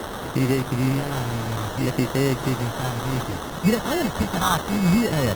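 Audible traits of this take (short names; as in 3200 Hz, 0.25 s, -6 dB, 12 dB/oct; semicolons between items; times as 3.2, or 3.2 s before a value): a quantiser's noise floor 6-bit, dither triangular; phasing stages 2, 0.6 Hz, lowest notch 340–1600 Hz; aliases and images of a low sample rate 2400 Hz, jitter 0%; Opus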